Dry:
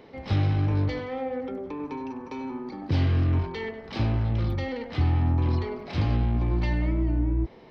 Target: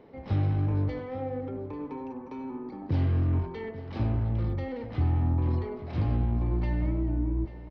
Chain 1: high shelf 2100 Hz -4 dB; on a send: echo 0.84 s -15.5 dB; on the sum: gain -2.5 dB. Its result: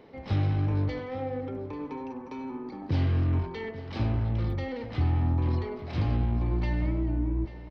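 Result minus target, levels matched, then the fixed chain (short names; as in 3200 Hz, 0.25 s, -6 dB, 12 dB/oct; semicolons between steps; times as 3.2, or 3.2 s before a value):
4000 Hz band +6.5 dB
high shelf 2100 Hz -13.5 dB; on a send: echo 0.84 s -15.5 dB; on the sum: gain -2.5 dB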